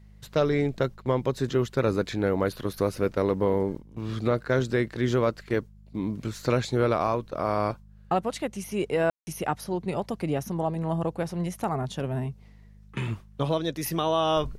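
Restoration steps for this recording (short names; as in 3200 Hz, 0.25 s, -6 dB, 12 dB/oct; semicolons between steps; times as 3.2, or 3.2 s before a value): de-hum 51.3 Hz, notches 4; room tone fill 9.1–9.27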